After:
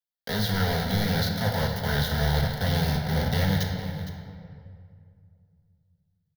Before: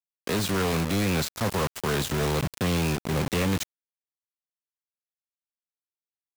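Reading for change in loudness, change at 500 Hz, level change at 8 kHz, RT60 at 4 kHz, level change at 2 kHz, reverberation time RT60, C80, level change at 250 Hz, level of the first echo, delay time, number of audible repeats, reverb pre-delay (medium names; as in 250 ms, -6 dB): +0.5 dB, -2.5 dB, -6.5 dB, 1.5 s, +1.0 dB, 2.3 s, 4.5 dB, -1.0 dB, -14.0 dB, 461 ms, 1, 9 ms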